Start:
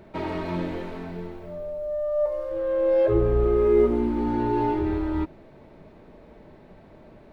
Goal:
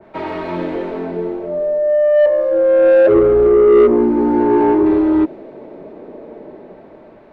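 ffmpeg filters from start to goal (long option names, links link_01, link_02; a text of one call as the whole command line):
ffmpeg -i in.wav -filter_complex "[0:a]acrossover=split=240|520|830[link_01][link_02][link_03][link_04];[link_02]dynaudnorm=framelen=350:gausssize=5:maxgain=16dB[link_05];[link_01][link_05][link_03][link_04]amix=inputs=4:normalize=0,asettb=1/sr,asplit=3[link_06][link_07][link_08];[link_06]atrim=end=3.474[link_09];[link_07]atrim=start=3.47:end=4.86,asetpts=PTS-STARTPTS,afade=type=in:duration=0.004:curve=qsin,afade=type=out:start_time=1.386:duration=0.004:curve=qsin,equalizer=frequency=3500:width_type=o:width=1:gain=-7.5[link_10];[link_08]atrim=start=4.856[link_11];[link_09][link_10]acrossfade=duration=0.004:curve1=hsin:curve2=qsin[link_12];[link_12][link_11]acrossfade=duration=0.004:curve1=qsin:curve2=hsin,asplit=2[link_13][link_14];[link_14]highpass=frequency=720:poles=1,volume=16dB,asoftclip=type=tanh:threshold=-3dB[link_15];[link_13][link_15]amix=inputs=2:normalize=0,lowpass=frequency=1400:poles=1,volume=-6dB,adynamicequalizer=threshold=0.0355:dfrequency=2000:dqfactor=0.7:tfrequency=2000:tqfactor=0.7:attack=5:release=100:ratio=0.375:range=2:mode=boostabove:tftype=highshelf" out.wav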